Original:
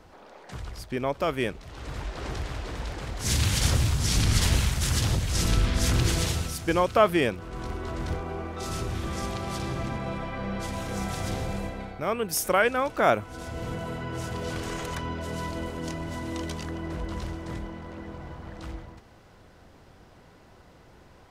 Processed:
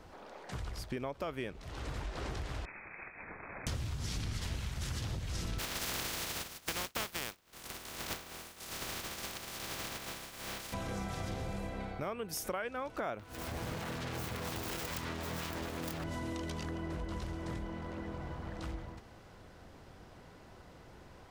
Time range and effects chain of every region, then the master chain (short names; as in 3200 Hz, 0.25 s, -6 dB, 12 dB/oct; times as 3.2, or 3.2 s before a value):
2.65–3.67 compressor 10:1, threshold -31 dBFS + brick-wall FIR high-pass 1200 Hz + inverted band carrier 3800 Hz
5.58–10.72 spectral contrast lowered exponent 0.21 + expander -26 dBFS
13.19–16.04 self-modulated delay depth 0.87 ms + HPF 40 Hz + high shelf 6000 Hz +9 dB
whole clip: dynamic EQ 10000 Hz, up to -6 dB, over -48 dBFS, Q 0.78; compressor 6:1, threshold -34 dBFS; gain -1.5 dB